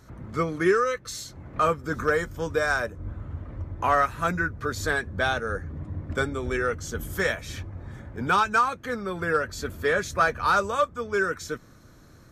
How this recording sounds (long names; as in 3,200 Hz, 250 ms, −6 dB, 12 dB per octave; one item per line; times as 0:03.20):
background noise floor −51 dBFS
spectral slope −4.5 dB per octave